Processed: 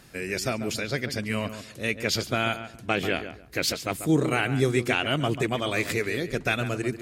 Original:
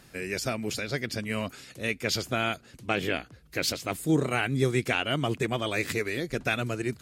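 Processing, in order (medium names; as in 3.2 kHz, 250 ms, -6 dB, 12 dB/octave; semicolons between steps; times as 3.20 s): filtered feedback delay 140 ms, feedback 23%, low-pass 2 kHz, level -10 dB; trim +2 dB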